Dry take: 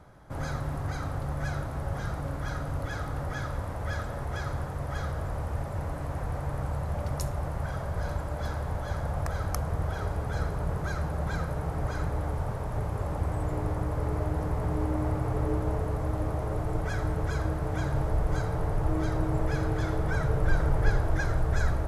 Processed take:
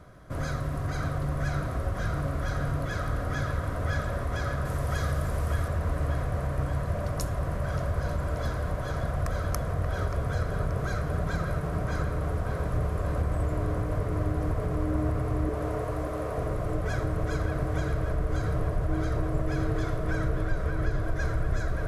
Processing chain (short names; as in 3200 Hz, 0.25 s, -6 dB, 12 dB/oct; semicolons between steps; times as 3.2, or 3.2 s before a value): 4.65–5.68 high shelf 3900 Hz +8.5 dB; 15.49–16.38 Chebyshev high-pass 470 Hz, order 2; compressor 6:1, threshold -28 dBFS, peak gain reduction 11.5 dB; Butterworth band-stop 850 Hz, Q 4.8; on a send: dark delay 0.581 s, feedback 62%, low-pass 3300 Hz, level -5.5 dB; on the sum: gain +3 dB